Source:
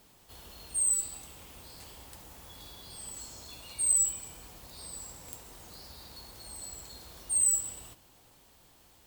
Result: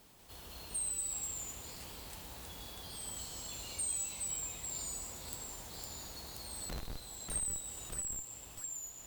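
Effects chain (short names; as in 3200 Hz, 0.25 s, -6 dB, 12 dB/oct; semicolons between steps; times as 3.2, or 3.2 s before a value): 6.69–7.36 Schmitt trigger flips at -38.5 dBFS; compressor, threshold -35 dBFS, peak gain reduction 13 dB; echoes that change speed 0.191 s, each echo -1 st, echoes 2; gain -1 dB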